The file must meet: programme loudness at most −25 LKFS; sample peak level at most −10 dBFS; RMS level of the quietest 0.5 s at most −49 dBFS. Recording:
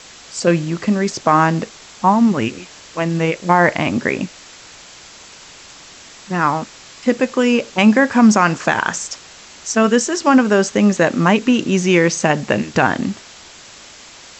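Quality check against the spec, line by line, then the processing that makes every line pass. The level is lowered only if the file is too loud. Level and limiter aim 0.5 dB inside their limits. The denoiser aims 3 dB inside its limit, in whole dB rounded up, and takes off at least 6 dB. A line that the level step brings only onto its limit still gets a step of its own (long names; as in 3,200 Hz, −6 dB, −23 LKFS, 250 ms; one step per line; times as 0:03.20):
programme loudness −16.0 LKFS: out of spec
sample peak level −2.0 dBFS: out of spec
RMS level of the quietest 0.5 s −41 dBFS: out of spec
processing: level −9.5 dB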